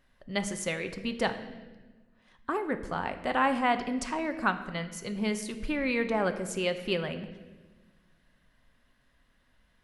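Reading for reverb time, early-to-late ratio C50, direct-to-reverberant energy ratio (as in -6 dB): 1.2 s, 11.5 dB, 8.0 dB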